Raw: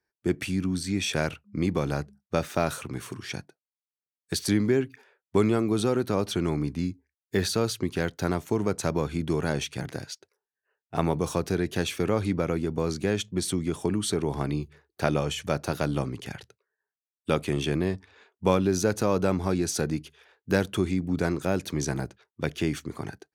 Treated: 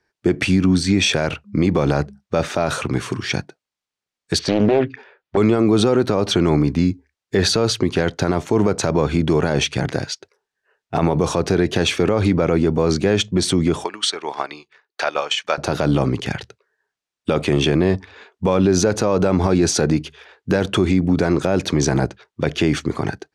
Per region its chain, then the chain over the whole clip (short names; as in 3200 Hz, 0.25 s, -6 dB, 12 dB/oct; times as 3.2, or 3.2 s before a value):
4.39–5.37 LPF 4000 Hz + Doppler distortion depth 0.7 ms
13.84–15.58 HPF 930 Hz + air absorption 52 m + transient shaper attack +6 dB, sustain -8 dB
whole clip: LPF 6300 Hz 12 dB/oct; dynamic EQ 640 Hz, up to +4 dB, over -38 dBFS, Q 0.81; maximiser +19 dB; gain -6 dB